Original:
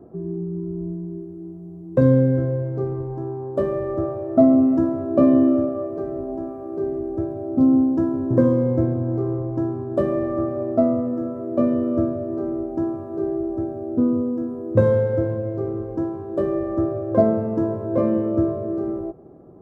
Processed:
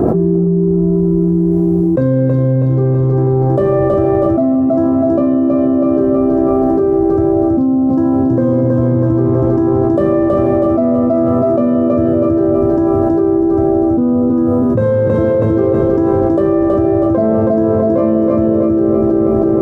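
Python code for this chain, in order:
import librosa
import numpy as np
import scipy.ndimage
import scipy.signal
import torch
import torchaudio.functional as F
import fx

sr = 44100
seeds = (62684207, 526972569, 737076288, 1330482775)

p1 = x + fx.echo_feedback(x, sr, ms=323, feedback_pct=47, wet_db=-3, dry=0)
p2 = fx.env_flatten(p1, sr, amount_pct=100)
y = p2 * librosa.db_to_amplitude(-2.0)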